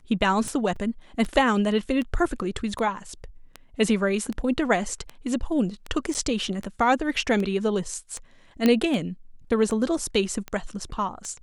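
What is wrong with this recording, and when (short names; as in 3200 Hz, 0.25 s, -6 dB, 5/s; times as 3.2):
tick 78 rpm
0.76 gap 3.8 ms
6.14–6.15 gap 8.3 ms
8.66 pop -8 dBFS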